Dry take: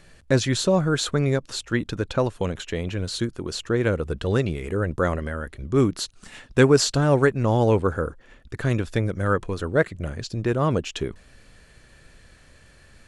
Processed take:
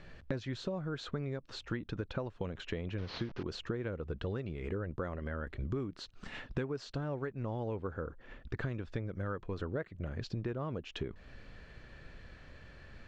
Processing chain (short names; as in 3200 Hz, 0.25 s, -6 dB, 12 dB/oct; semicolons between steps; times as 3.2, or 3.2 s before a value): 2.98–3.43 delta modulation 32 kbps, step -31 dBFS; compressor 16:1, threshold -33 dBFS, peak gain reduction 23 dB; air absorption 200 m